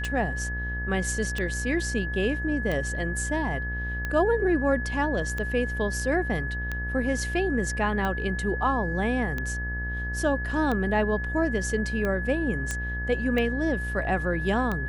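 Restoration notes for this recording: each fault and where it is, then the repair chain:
mains buzz 60 Hz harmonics 37 −32 dBFS
scratch tick 45 rpm −17 dBFS
whistle 1,700 Hz −32 dBFS
0:12.71: click −15 dBFS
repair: click removal
hum removal 60 Hz, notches 37
notch filter 1,700 Hz, Q 30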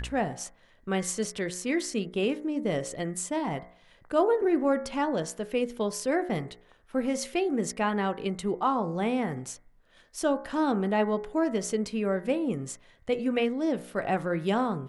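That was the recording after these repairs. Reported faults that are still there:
none of them is left

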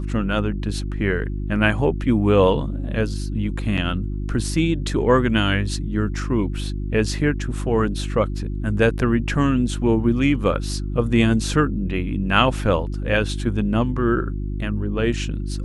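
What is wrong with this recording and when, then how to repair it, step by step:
mains hum 50 Hz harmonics 7 −26 dBFS
0:03.77–0:03.78: drop-out 6.8 ms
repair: hum removal 50 Hz, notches 7
repair the gap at 0:03.77, 6.8 ms

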